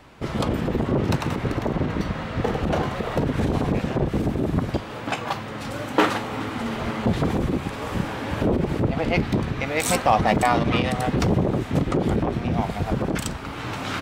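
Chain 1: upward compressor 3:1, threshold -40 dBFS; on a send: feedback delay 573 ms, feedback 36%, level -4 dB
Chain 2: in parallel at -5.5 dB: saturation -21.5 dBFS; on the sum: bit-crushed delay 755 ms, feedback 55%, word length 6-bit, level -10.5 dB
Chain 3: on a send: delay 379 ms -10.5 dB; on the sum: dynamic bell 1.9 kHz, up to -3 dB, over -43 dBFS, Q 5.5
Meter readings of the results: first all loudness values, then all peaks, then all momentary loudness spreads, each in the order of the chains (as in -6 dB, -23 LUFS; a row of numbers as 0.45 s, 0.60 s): -22.5 LUFS, -21.5 LUFS, -24.0 LUFS; -3.5 dBFS, -4.0 dBFS, -4.5 dBFS; 7 LU, 7 LU, 7 LU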